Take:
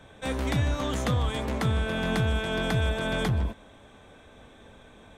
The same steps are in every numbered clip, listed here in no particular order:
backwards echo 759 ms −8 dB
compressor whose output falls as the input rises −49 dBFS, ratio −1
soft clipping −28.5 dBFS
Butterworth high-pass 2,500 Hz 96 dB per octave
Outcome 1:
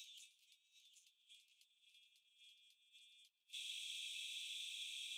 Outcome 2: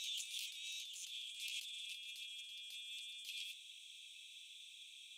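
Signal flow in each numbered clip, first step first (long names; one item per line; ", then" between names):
backwards echo, then compressor whose output falls as the input rises, then soft clipping, then Butterworth high-pass
Butterworth high-pass, then backwards echo, then soft clipping, then compressor whose output falls as the input rises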